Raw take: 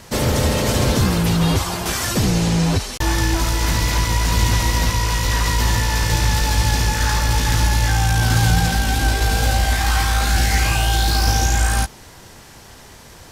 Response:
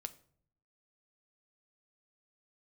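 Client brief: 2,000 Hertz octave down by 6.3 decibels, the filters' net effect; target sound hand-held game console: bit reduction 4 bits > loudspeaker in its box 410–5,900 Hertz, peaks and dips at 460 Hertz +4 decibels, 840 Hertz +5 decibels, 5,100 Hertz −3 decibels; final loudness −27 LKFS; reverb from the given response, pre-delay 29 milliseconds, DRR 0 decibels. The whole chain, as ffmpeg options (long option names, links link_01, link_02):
-filter_complex "[0:a]equalizer=frequency=2000:width_type=o:gain=-8.5,asplit=2[link_01][link_02];[1:a]atrim=start_sample=2205,adelay=29[link_03];[link_02][link_03]afir=irnorm=-1:irlink=0,volume=3.5dB[link_04];[link_01][link_04]amix=inputs=2:normalize=0,acrusher=bits=3:mix=0:aa=0.000001,highpass=410,equalizer=frequency=460:width_type=q:width=4:gain=4,equalizer=frequency=840:width_type=q:width=4:gain=5,equalizer=frequency=5100:width_type=q:width=4:gain=-3,lowpass=frequency=5900:width=0.5412,lowpass=frequency=5900:width=1.3066,volume=-6.5dB"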